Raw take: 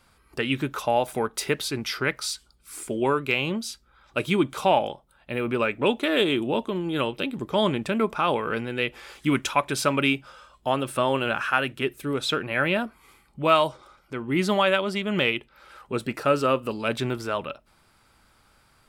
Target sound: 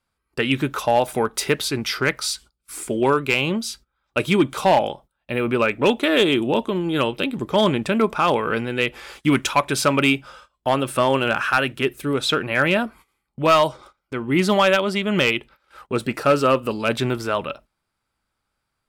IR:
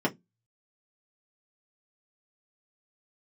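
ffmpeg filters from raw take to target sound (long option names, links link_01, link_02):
-filter_complex "[0:a]agate=range=-22dB:threshold=-47dB:ratio=16:detection=peak,acrossover=split=7700[link_01][link_02];[link_01]volume=14dB,asoftclip=hard,volume=-14dB[link_03];[link_03][link_02]amix=inputs=2:normalize=0,volume=5dB"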